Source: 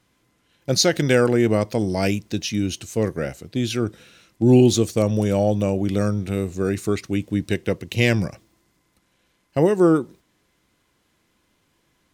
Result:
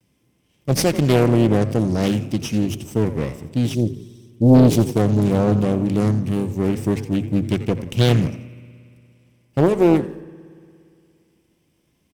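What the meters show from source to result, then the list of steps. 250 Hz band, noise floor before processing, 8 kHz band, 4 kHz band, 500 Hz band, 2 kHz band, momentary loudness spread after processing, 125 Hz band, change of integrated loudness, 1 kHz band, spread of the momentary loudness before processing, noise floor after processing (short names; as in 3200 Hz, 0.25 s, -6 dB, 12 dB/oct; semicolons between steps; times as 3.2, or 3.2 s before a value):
+3.0 dB, -67 dBFS, -3.5 dB, -2.5 dB, 0.0 dB, -4.5 dB, 10 LU, +4.5 dB, +2.0 dB, +2.5 dB, 10 LU, -65 dBFS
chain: minimum comb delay 0.36 ms; vibrato 0.52 Hz 36 cents; high shelf 8800 Hz +5 dB; on a send: frequency-shifting echo 86 ms, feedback 37%, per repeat +33 Hz, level -14 dB; on the sum: spectral gain 3.74–4.55, 450–3200 Hz -27 dB; HPF 70 Hz 6 dB/oct; low shelf 330 Hz +10 dB; notches 50/100 Hz; spring tank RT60 2.6 s, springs 58 ms, chirp 75 ms, DRR 19.5 dB; Doppler distortion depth 0.82 ms; gain -3 dB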